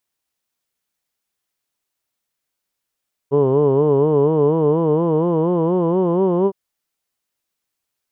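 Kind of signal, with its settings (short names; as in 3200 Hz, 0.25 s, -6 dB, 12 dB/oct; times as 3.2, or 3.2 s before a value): formant vowel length 3.21 s, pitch 136 Hz, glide +5.5 st, vibrato 4.2 Hz, vibrato depth 1.1 st, F1 430 Hz, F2 1000 Hz, F3 3000 Hz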